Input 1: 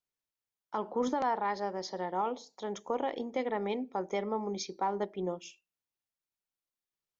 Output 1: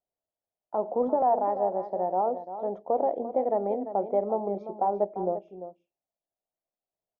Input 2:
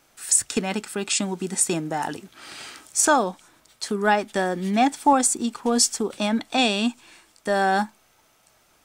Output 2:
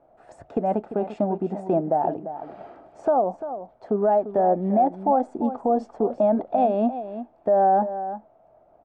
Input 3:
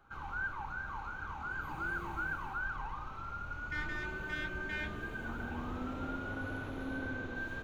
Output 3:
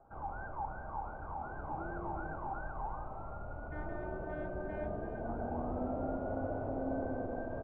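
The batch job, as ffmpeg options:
-af "lowpass=f=670:t=q:w=5.4,alimiter=limit=0.237:level=0:latency=1:release=151,aecho=1:1:345:0.266"

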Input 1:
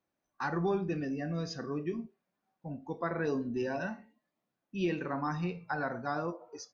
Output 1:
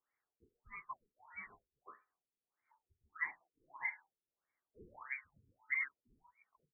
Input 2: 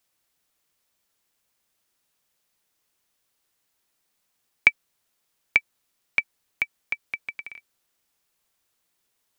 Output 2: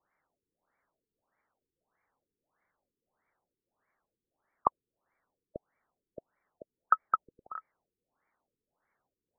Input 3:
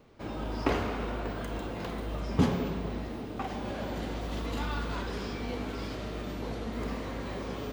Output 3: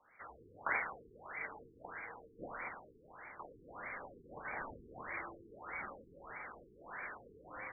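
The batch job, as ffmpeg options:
-af "lowpass=f=3100:t=q:w=0.5098,lowpass=f=3100:t=q:w=0.6013,lowpass=f=3100:t=q:w=0.9,lowpass=f=3100:t=q:w=2.563,afreqshift=-3600,afftfilt=real='re*lt(b*sr/1024,460*pow(2400/460,0.5+0.5*sin(2*PI*1.6*pts/sr)))':imag='im*lt(b*sr/1024,460*pow(2400/460,0.5+0.5*sin(2*PI*1.6*pts/sr)))':win_size=1024:overlap=0.75,volume=1.78"

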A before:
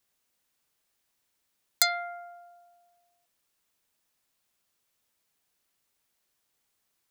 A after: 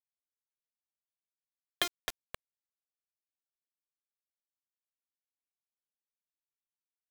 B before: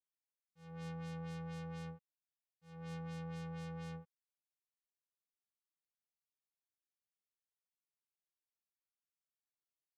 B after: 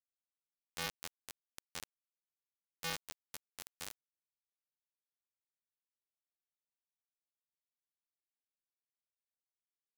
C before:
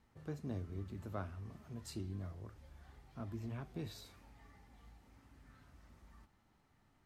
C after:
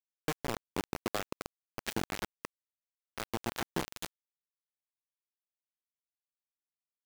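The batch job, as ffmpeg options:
-filter_complex "[0:a]acrusher=samples=6:mix=1:aa=0.000001,highpass=f=160:w=0.5412,highpass=f=160:w=1.3066,equalizer=f=440:t=q:w=4:g=4,equalizer=f=740:t=q:w=4:g=10,equalizer=f=1700:t=q:w=4:g=10,equalizer=f=3100:t=q:w=4:g=10,lowpass=f=4200:w=0.5412,lowpass=f=4200:w=1.3066,afftdn=nr=24:nf=-56,bandreject=f=60:t=h:w=6,bandreject=f=120:t=h:w=6,bandreject=f=180:t=h:w=6,bandreject=f=240:t=h:w=6,bandreject=f=300:t=h:w=6,bandreject=f=360:t=h:w=6,bandreject=f=420:t=h:w=6,bandreject=f=480:t=h:w=6,acompressor=threshold=0.00562:ratio=5,equalizer=f=710:t=o:w=0.34:g=-5,asplit=2[s0][s1];[s1]adelay=264,lowpass=f=1900:p=1,volume=0.596,asplit=2[s2][s3];[s3]adelay=264,lowpass=f=1900:p=1,volume=0.52,asplit=2[s4][s5];[s5]adelay=264,lowpass=f=1900:p=1,volume=0.52,asplit=2[s6][s7];[s7]adelay=264,lowpass=f=1900:p=1,volume=0.52,asplit=2[s8][s9];[s9]adelay=264,lowpass=f=1900:p=1,volume=0.52,asplit=2[s10][s11];[s11]adelay=264,lowpass=f=1900:p=1,volume=0.52,asplit=2[s12][s13];[s13]adelay=264,lowpass=f=1900:p=1,volume=0.52[s14];[s0][s2][s4][s6][s8][s10][s12][s14]amix=inputs=8:normalize=0,acrusher=bits=6:mix=0:aa=0.000001,asoftclip=type=tanh:threshold=0.0316,volume=4.73"

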